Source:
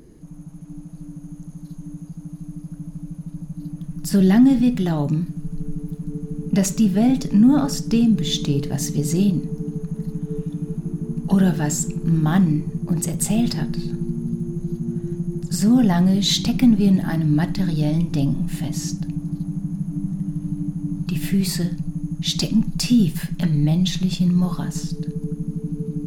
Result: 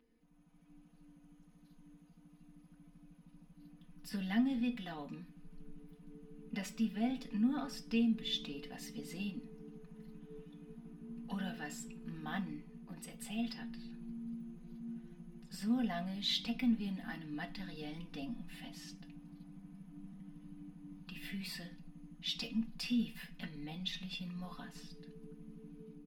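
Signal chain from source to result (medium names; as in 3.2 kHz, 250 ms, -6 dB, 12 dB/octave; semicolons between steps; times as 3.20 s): pre-emphasis filter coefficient 0.97; comb 4 ms, depth 94%; level rider gain up to 5 dB; distance through air 430 m; feedback comb 230 Hz, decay 0.15 s, harmonics all, mix 70%; trim +3.5 dB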